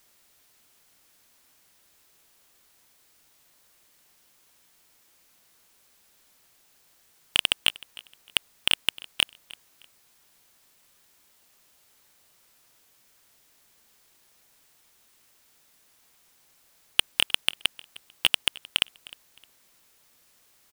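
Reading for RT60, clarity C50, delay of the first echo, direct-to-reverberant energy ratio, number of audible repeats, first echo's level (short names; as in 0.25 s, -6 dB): none, none, 0.308 s, none, 2, -21.5 dB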